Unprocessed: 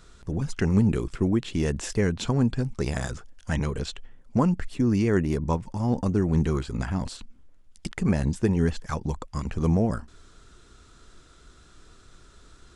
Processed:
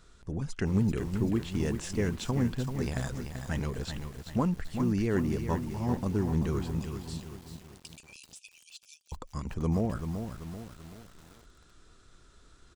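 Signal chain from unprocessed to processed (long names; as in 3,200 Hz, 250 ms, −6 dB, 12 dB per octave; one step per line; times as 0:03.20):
0:06.79–0:09.12: linear-phase brick-wall high-pass 2,300 Hz
single-tap delay 385 ms −20.5 dB
feedback echo at a low word length 386 ms, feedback 55%, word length 7 bits, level −7 dB
level −6 dB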